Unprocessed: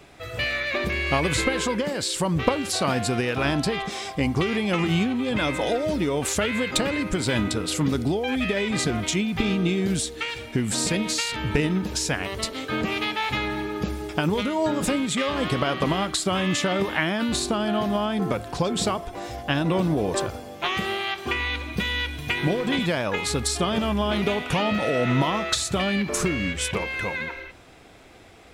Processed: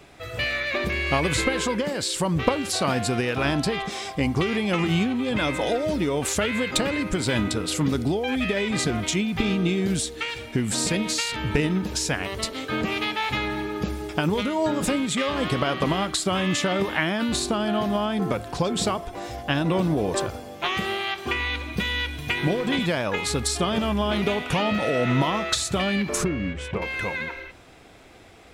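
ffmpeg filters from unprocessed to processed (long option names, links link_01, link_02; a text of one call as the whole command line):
ffmpeg -i in.wav -filter_complex "[0:a]asettb=1/sr,asplit=3[link_01][link_02][link_03];[link_01]atrim=end=26.244[link_04];[link_02]atrim=start=26.24:end=26.82,asetpts=PTS-STARTPTS,afade=type=in:duration=0.004:curve=qsin,afade=type=out:start_time=0.576:duration=0.004:curve=qsin,lowpass=frequency=1100:poles=1[link_05];[link_03]atrim=start=26.816[link_06];[link_04][link_05]acrossfade=duration=0.004:curve1=hsin:curve2=qsin[link_07];[link_07][link_06]acrossfade=duration=0.004:curve1=qsin:curve2=hsin" out.wav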